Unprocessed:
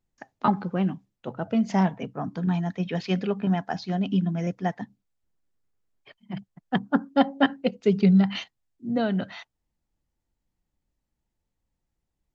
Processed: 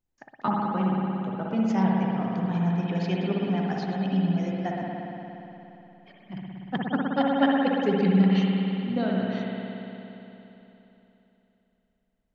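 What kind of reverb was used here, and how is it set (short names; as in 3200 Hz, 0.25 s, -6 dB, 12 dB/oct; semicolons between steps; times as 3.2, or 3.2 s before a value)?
spring tank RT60 3.4 s, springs 58 ms, chirp 50 ms, DRR -3 dB; gain -5 dB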